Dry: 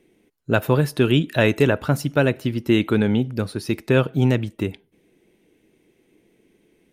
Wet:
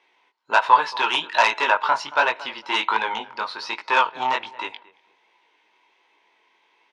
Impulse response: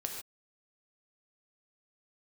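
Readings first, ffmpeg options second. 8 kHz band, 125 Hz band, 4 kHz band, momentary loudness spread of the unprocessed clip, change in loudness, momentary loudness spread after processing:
-1.5 dB, under -35 dB, +5.0 dB, 9 LU, -0.5 dB, 13 LU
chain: -filter_complex "[0:a]lowpass=f=4.8k:w=0.5412,lowpass=f=4.8k:w=1.3066,highshelf=f=2.2k:g=9,asplit=2[a][b];[b]adelay=226,lowpass=f=1.5k:p=1,volume=-19dB,asplit=2[c][d];[d]adelay=226,lowpass=f=1.5k:p=1,volume=0.25[e];[c][e]amix=inputs=2:normalize=0[f];[a][f]amix=inputs=2:normalize=0,flanger=delay=17:depth=6.8:speed=1.3,aeval=exprs='0.668*sin(PI/2*2*val(0)/0.668)':c=same,highpass=f=950:t=q:w=10,volume=-7dB"

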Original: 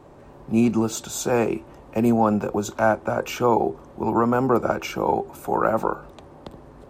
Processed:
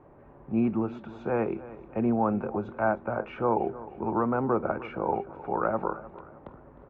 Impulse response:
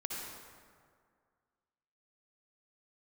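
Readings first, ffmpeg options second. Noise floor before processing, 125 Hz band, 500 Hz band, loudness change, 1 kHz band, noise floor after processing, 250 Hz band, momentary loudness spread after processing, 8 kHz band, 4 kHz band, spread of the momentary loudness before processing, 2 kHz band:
-47 dBFS, -6.5 dB, -6.5 dB, -6.5 dB, -6.5 dB, -53 dBFS, -6.5 dB, 12 LU, under -40 dB, under -15 dB, 8 LU, -7.0 dB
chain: -af "lowpass=f=2.2k:w=0.5412,lowpass=f=2.2k:w=1.3066,aecho=1:1:308|616|924|1232:0.141|0.0607|0.0261|0.0112,volume=-6.5dB"

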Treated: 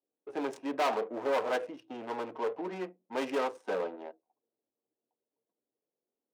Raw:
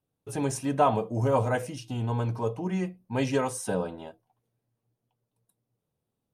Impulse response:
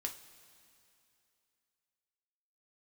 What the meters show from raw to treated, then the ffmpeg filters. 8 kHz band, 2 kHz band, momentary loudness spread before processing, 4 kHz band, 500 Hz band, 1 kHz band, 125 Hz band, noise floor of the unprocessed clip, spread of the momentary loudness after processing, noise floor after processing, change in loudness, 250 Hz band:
-15.5 dB, -1.5 dB, 11 LU, -2.0 dB, -3.5 dB, -5.0 dB, under -25 dB, -84 dBFS, 11 LU, under -85 dBFS, -5.5 dB, -8.5 dB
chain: -af "adynamicsmooth=sensitivity=6:basefreq=690,volume=25dB,asoftclip=hard,volume=-25dB,highpass=f=310:w=0.5412,highpass=f=310:w=1.3066"

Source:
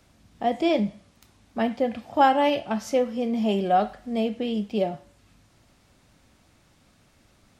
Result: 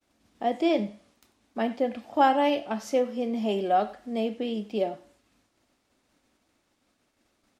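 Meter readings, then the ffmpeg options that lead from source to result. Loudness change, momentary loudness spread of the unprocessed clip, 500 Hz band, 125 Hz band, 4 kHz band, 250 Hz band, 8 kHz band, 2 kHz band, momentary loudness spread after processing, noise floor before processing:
-2.5 dB, 9 LU, -2.0 dB, n/a, -3.0 dB, -3.0 dB, -3.0 dB, -3.0 dB, 9 LU, -61 dBFS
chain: -af "agate=range=-33dB:threshold=-53dB:ratio=3:detection=peak,lowshelf=f=200:t=q:w=1.5:g=-8.5,aecho=1:1:93:0.0944,volume=-3dB"

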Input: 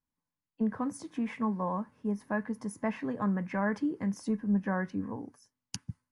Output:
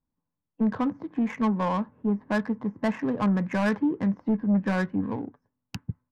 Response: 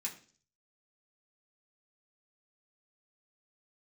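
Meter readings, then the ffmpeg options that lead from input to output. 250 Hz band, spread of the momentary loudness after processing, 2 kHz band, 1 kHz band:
+6.5 dB, 10 LU, +5.5 dB, +5.0 dB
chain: -af "lowpass=3.1k,aresample=16000,aeval=exprs='0.126*sin(PI/2*1.58*val(0)/0.126)':c=same,aresample=44100,adynamicsmooth=sensitivity=5:basefreq=1.1k"

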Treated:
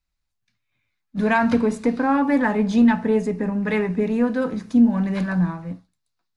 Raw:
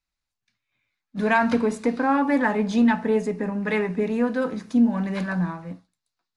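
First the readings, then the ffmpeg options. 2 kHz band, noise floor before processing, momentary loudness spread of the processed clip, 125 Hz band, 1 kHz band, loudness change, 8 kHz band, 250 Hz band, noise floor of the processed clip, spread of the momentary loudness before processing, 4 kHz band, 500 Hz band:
0.0 dB, -85 dBFS, 8 LU, +4.5 dB, +0.5 dB, +2.5 dB, n/a, +3.5 dB, -77 dBFS, 7 LU, 0.0 dB, +1.0 dB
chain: -af "lowshelf=f=170:g=9.5"

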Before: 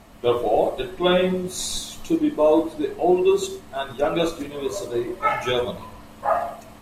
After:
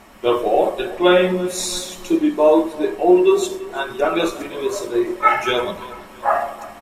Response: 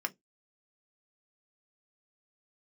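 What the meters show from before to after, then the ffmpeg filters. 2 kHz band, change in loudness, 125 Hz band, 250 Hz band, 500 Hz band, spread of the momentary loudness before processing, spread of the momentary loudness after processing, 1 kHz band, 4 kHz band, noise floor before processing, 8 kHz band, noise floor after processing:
+7.0 dB, +4.5 dB, -1.5 dB, +4.5 dB, +4.0 dB, 11 LU, 12 LU, +5.0 dB, +3.0 dB, -44 dBFS, +4.0 dB, -40 dBFS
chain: -filter_complex "[0:a]asplit=2[a][b];[b]adelay=333,lowpass=f=3.5k:p=1,volume=-18dB,asplit=2[c][d];[d]adelay=333,lowpass=f=3.5k:p=1,volume=0.52,asplit=2[e][f];[f]adelay=333,lowpass=f=3.5k:p=1,volume=0.52,asplit=2[g][h];[h]adelay=333,lowpass=f=3.5k:p=1,volume=0.52[i];[a][c][e][g][i]amix=inputs=5:normalize=0,asplit=2[j][k];[1:a]atrim=start_sample=2205[l];[k][l]afir=irnorm=-1:irlink=0,volume=-1dB[m];[j][m]amix=inputs=2:normalize=0,volume=-1dB"

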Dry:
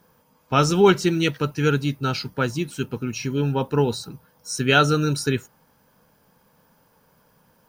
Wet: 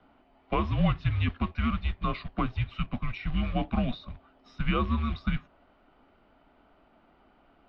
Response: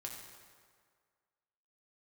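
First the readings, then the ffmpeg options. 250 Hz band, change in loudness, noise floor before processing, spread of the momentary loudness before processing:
-7.5 dB, -8.5 dB, -61 dBFS, 12 LU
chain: -filter_complex "[0:a]acrossover=split=81|250|1100[a][b][c][d];[a]acompressor=threshold=-52dB:ratio=4[e];[b]acompressor=threshold=-25dB:ratio=4[f];[c]acompressor=threshold=-29dB:ratio=4[g];[d]acompressor=threshold=-37dB:ratio=4[h];[e][f][g][h]amix=inputs=4:normalize=0,acrusher=bits=5:mode=log:mix=0:aa=0.000001,highpass=f=210:t=q:w=0.5412,highpass=f=210:t=q:w=1.307,lowpass=f=3.6k:t=q:w=0.5176,lowpass=f=3.6k:t=q:w=0.7071,lowpass=f=3.6k:t=q:w=1.932,afreqshift=-230,volume=1dB"

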